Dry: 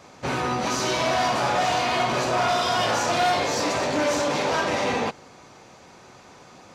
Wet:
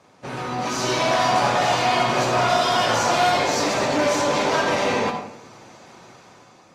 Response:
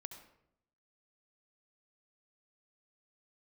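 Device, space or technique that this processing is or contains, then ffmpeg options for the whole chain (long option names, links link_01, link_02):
far-field microphone of a smart speaker: -filter_complex "[1:a]atrim=start_sample=2205[link_01];[0:a][link_01]afir=irnorm=-1:irlink=0,highpass=frequency=92:width=0.5412,highpass=frequency=92:width=1.3066,dynaudnorm=framelen=160:gausssize=9:maxgain=7.5dB" -ar 48000 -c:a libopus -b:a 32k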